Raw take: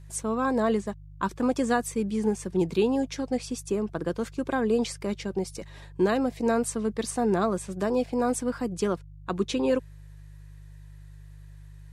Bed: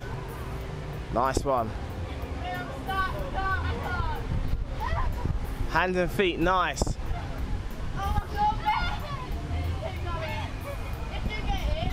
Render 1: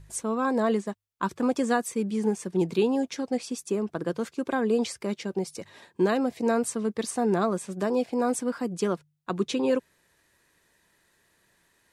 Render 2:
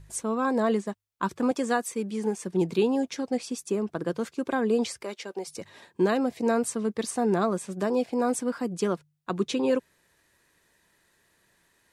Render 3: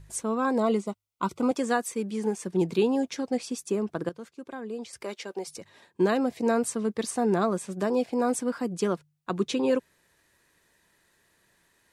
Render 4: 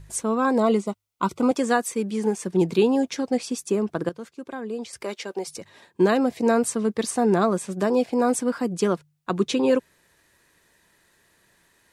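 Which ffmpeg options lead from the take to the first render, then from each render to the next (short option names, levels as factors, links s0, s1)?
-af "bandreject=f=50:t=h:w=4,bandreject=f=100:t=h:w=4,bandreject=f=150:t=h:w=4"
-filter_complex "[0:a]asettb=1/sr,asplit=3[s0][s1][s2];[s0]atrim=end=1.514[s3];[s1]atrim=start=1.51:end=2.44,asetpts=PTS-STARTPTS,afade=t=in:d=0.004:c=qsin,afade=t=out:st=0.926:d=0.004:c=qsin,highpass=f=250:p=1[s4];[s2]atrim=start=2.436[s5];[s3][s4]acrossfade=d=0.004:c1=hsin:c2=qsin[s6];[s6][s5]acrossfade=d=0.004:c1=qsin:c2=hsin,asettb=1/sr,asplit=3[s7][s8][s9];[s7]atrim=end=5.034[s10];[s8]atrim=start=5.03:end=5.47,asetpts=PTS-STARTPTS,afade=t=in:d=0.004:c=qsin,afade=t=out:st=0.436:d=0.004:c=qsin,highpass=450[s11];[s9]atrim=start=5.466[s12];[s10][s11]acrossfade=d=0.004:c1=hsin:c2=qsin[s13];[s13][s12]acrossfade=d=0.004:c1=qsin:c2=hsin"
-filter_complex "[0:a]asettb=1/sr,asplit=3[s0][s1][s2];[s0]atrim=end=0.584[s3];[s1]atrim=start=0.58:end=1.51,asetpts=PTS-STARTPTS,afade=t=in:d=0.004:c=qsin,afade=t=out:st=0.926:d=0.004:c=qsin,asuperstop=centerf=1700:order=12:qfactor=4.5[s4];[s2]atrim=start=1.506[s5];[s3][s4]acrossfade=d=0.004:c1=hsin:c2=qsin[s6];[s6][s5]acrossfade=d=0.004:c1=qsin:c2=hsin,asplit=5[s7][s8][s9][s10][s11];[s7]atrim=end=4.092[s12];[s8]atrim=start=4.088:end=4.932,asetpts=PTS-STARTPTS,volume=0.266[s13];[s9]atrim=start=4.928:end=5.582[s14];[s10]atrim=start=5.578:end=6.002,asetpts=PTS-STARTPTS,volume=0.562[s15];[s11]atrim=start=5.998[s16];[s12][s13]acrossfade=d=0.004:c1=hsin:c2=hsin[s17];[s17][s14]acrossfade=d=0.004:c1=hsin:c2=hsin[s18];[s18][s15]acrossfade=d=0.004:c1=hsin:c2=hsin[s19];[s19][s16]acrossfade=d=0.004:c1=hsin:c2=hsin"
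-af "volume=1.68"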